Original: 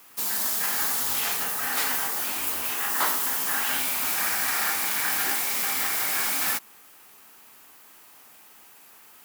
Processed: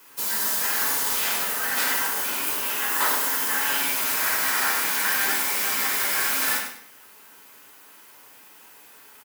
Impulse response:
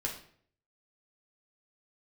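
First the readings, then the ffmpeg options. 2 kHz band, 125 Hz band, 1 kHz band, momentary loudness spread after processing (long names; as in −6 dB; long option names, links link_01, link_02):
+4.0 dB, can't be measured, +2.5 dB, 3 LU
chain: -filter_complex "[0:a]highpass=frequency=140:poles=1,aecho=1:1:99|198|297:0.355|0.0852|0.0204[link_01];[1:a]atrim=start_sample=2205[link_02];[link_01][link_02]afir=irnorm=-1:irlink=0"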